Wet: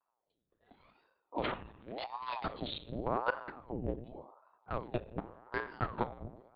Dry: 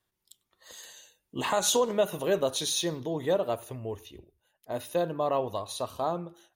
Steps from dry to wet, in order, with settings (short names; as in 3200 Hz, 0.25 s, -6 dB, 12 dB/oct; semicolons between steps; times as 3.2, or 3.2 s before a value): Wiener smoothing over 41 samples; 1.71–2.46 Chebyshev band-stop 160–1800 Hz, order 2; in parallel at -10 dB: overloaded stage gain 21.5 dB; on the sum: flipped gate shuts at -18 dBFS, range -41 dB; reverb RT60 0.90 s, pre-delay 6 ms, DRR 8 dB; monotone LPC vocoder at 8 kHz 120 Hz; ring modulator with a swept carrier 540 Hz, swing 90%, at 0.89 Hz